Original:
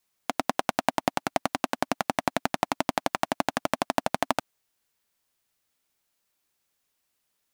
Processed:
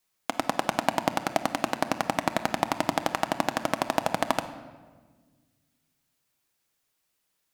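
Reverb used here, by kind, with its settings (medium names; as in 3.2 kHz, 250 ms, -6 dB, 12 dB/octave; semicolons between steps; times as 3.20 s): simulated room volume 1400 m³, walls mixed, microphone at 0.62 m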